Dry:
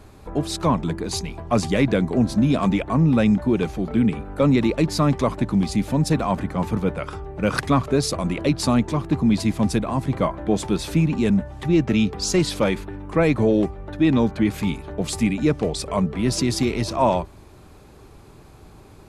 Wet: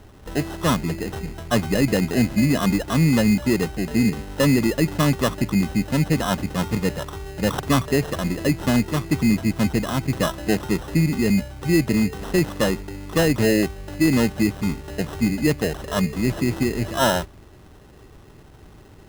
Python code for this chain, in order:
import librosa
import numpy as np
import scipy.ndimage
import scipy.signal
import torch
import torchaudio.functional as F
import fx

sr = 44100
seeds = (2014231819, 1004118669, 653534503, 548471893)

y = fx.high_shelf(x, sr, hz=3100.0, db=-12.0)
y = fx.sample_hold(y, sr, seeds[0], rate_hz=2300.0, jitter_pct=0)